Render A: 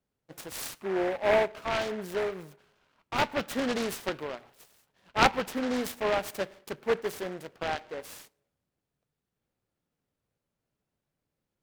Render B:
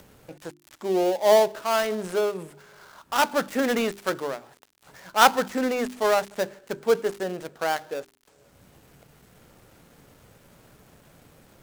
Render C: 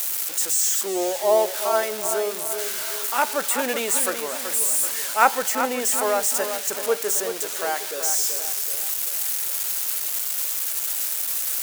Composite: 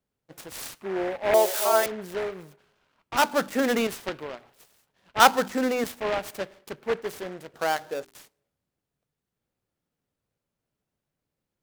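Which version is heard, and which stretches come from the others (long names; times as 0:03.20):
A
0:01.34–0:01.86: punch in from C
0:03.17–0:03.87: punch in from B
0:05.20–0:05.84: punch in from B
0:07.54–0:08.15: punch in from B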